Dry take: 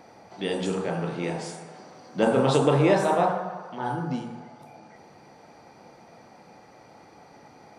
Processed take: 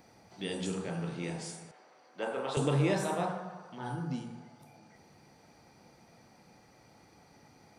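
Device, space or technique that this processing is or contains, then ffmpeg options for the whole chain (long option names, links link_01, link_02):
smiley-face EQ: -filter_complex "[0:a]asettb=1/sr,asplit=3[link_01][link_02][link_03];[link_01]atrim=end=1.714[link_04];[link_02]atrim=start=1.71:end=2.57,asetpts=PTS-STARTPTS,afade=type=in:duration=0.004:curve=qsin,afade=type=out:start_time=0.856:duration=0.004:curve=qsin,acrossover=split=390 3100:gain=0.0708 1 0.251[link_05][link_06][link_07];[link_05][link_06][link_07]amix=inputs=3:normalize=0[link_08];[link_03]atrim=start=2.566[link_09];[link_04][link_08]acrossfade=duration=0.004:curve1=hsin:curve2=qsin[link_10];[link_10][link_09]acrossfade=duration=0.004:curve1=qsin:curve2=hsin,lowshelf=frequency=92:gain=7,equalizer=frequency=700:width_type=o:width=2.4:gain=-6.5,highshelf=frequency=8400:gain=8.5,volume=-5.5dB"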